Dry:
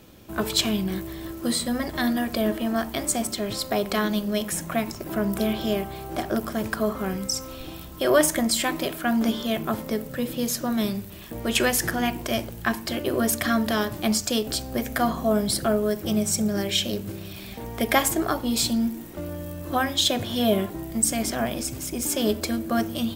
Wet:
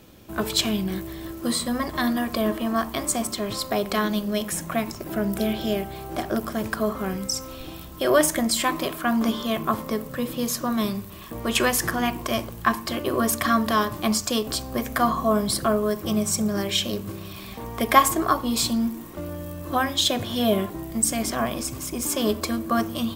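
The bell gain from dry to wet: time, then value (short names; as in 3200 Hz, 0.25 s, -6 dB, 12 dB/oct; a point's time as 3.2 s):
bell 1100 Hz 0.22 oct
+1 dB
from 1.46 s +11.5 dB
from 3.71 s +4 dB
from 5.09 s -6.5 dB
from 5.96 s +3 dB
from 8.57 s +14 dB
from 19.15 s +7 dB
from 21.31 s +14.5 dB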